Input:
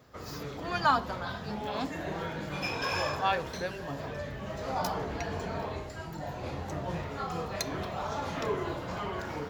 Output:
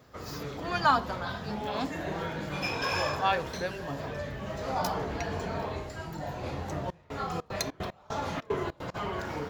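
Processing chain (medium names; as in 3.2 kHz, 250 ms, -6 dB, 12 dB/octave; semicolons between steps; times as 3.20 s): 6.85–8.94 s: trance gate ".xxx.xx.x." 150 bpm -24 dB; trim +1.5 dB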